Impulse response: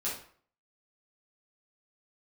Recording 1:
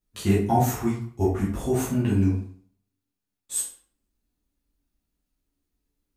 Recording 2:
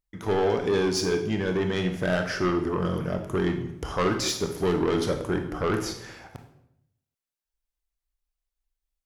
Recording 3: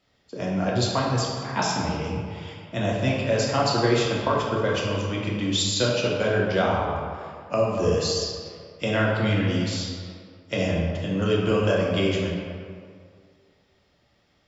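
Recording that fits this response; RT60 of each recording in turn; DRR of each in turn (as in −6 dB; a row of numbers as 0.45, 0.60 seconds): 1; 0.50, 0.75, 2.1 seconds; −8.0, 5.0, −4.5 decibels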